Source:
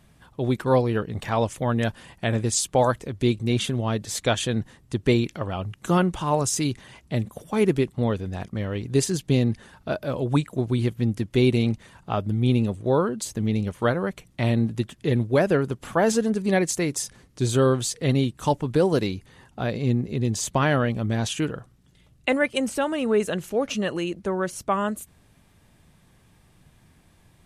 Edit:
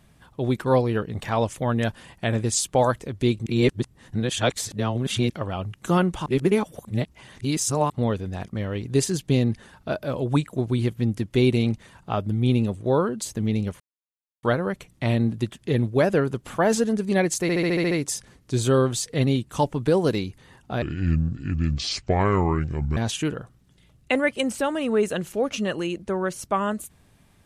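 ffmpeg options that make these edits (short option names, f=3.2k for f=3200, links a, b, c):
-filter_complex "[0:a]asplit=15[a][b][c][d][e][f][g][h][i][j][k][l][m][n][o];[a]atrim=end=3.462[p];[b]atrim=start=3.458:end=5.302,asetpts=PTS-STARTPTS,areverse[q];[c]atrim=start=5.298:end=6.262[r];[d]atrim=start=6.258:end=7.902,asetpts=PTS-STARTPTS,areverse[s];[e]atrim=start=7.898:end=13.8,asetpts=PTS-STARTPTS,afade=t=out:st=5.898:d=0.004:c=hsin,apad=pad_dur=0.63[t];[f]atrim=start=13.8:end=16.862,asetpts=PTS-STARTPTS,afade=t=in:d=0.004:c=hsin[u];[g]atrim=start=16.788:end=16.862[v];[h]atrim=start=16.788:end=16.862[w];[i]atrim=start=16.788:end=16.862[x];[j]atrim=start=16.788:end=16.862[y];[k]atrim=start=16.788:end=16.862[z];[l]atrim=start=16.788:end=16.862[aa];[m]atrim=start=16.788:end=19.704[ab];[n]atrim=start=19.7:end=21.14,asetpts=PTS-STARTPTS,asetrate=29547,aresample=44100,atrim=end_sample=94782,asetpts=PTS-STARTPTS[ac];[o]atrim=start=21.136[ad];[p][q]acrossfade=d=0.004:c1=hsin:c2=hsin[ae];[ae][r]acrossfade=d=0.004:c1=hsin:c2=hsin[af];[af][s]acrossfade=d=0.004:c1=hsin:c2=hsin[ag];[t][u]concat=n=2:v=0:a=1[ah];[ag][ah]acrossfade=d=0.004:c1=hsin:c2=hsin[ai];[ai][v]acrossfade=d=0.004:c1=hsin:c2=hsin[aj];[aj][w]acrossfade=d=0.004:c1=hsin:c2=hsin[ak];[ak][x]acrossfade=d=0.004:c1=hsin:c2=hsin[al];[al][y]acrossfade=d=0.004:c1=hsin:c2=hsin[am];[am][z]acrossfade=d=0.004:c1=hsin:c2=hsin[an];[an][aa]acrossfade=d=0.004:c1=hsin:c2=hsin[ao];[ao][ab]acrossfade=d=0.004:c1=hsin:c2=hsin[ap];[ap][ac]acrossfade=d=0.004:c1=hsin:c2=hsin[aq];[aq][ad]acrossfade=d=0.004:c1=hsin:c2=hsin"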